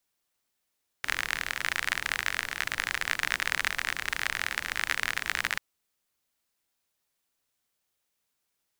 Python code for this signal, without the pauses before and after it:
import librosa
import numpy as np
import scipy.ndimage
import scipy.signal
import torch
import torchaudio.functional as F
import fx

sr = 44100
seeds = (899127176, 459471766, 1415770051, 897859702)

y = fx.rain(sr, seeds[0], length_s=4.54, drops_per_s=44.0, hz=1800.0, bed_db=-15.0)